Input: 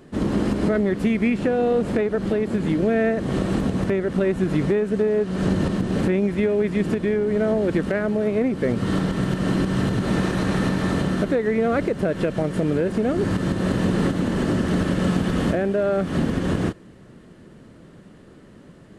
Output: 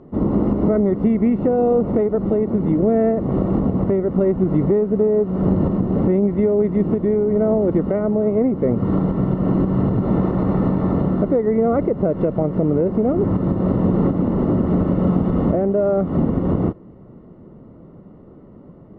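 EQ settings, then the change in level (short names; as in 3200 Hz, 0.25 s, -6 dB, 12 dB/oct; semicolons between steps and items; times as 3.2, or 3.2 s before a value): polynomial smoothing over 65 samples; air absorption 120 m; +4.0 dB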